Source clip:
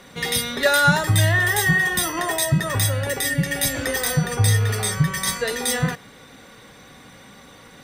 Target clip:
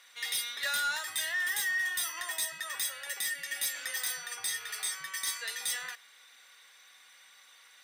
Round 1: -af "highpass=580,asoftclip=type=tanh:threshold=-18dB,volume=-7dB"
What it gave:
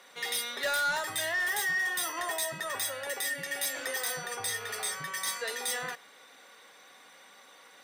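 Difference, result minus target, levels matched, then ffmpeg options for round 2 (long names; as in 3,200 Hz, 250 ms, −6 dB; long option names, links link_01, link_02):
500 Hz band +13.5 dB
-af "highpass=1700,asoftclip=type=tanh:threshold=-18dB,volume=-7dB"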